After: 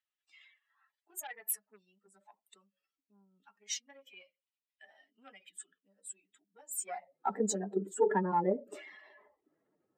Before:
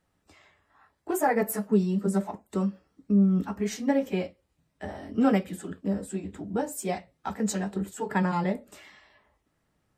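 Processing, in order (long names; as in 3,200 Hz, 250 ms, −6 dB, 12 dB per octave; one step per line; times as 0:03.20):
expanding power law on the bin magnitudes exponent 1.9
harmonic generator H 4 −30 dB, 7 −44 dB, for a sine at −12 dBFS
high-pass filter sweep 3,000 Hz → 380 Hz, 0:06.71–0:07.26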